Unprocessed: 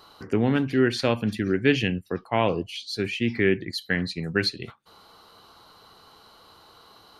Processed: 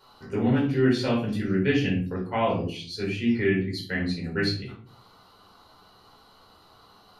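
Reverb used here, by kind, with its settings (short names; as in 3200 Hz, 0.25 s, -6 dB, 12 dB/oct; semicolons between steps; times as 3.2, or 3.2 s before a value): shoebox room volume 390 m³, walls furnished, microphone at 4.7 m; gain -10.5 dB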